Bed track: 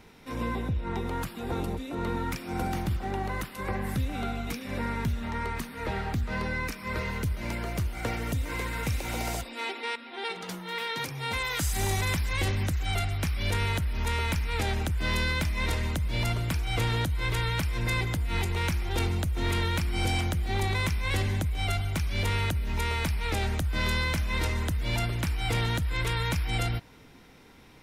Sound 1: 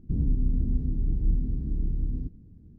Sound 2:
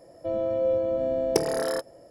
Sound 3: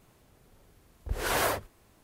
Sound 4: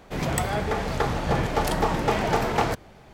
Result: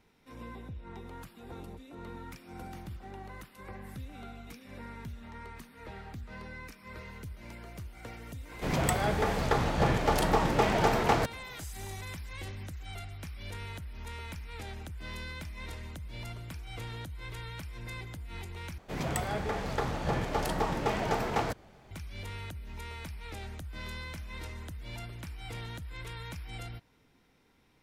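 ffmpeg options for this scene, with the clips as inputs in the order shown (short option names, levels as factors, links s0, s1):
-filter_complex "[4:a]asplit=2[s0][s1];[0:a]volume=0.211,asplit=2[s2][s3];[s2]atrim=end=18.784[s4];[s1]atrim=end=3.13,asetpts=PTS-STARTPTS,volume=0.447[s5];[s3]atrim=start=21.906[s6];[s0]atrim=end=3.13,asetpts=PTS-STARTPTS,volume=0.75,afade=t=in:d=0.004:c=hsin,afade=t=out:st=3.126:d=0.004:c=hsin,adelay=8510[s7];[s4][s5]acrossfade=d=0.004:c1=hsin:c2=hsin[s8];[s8][s6]acrossfade=d=0.004:c1=hsin:c2=hsin[s9];[s9][s7]amix=inputs=2:normalize=0"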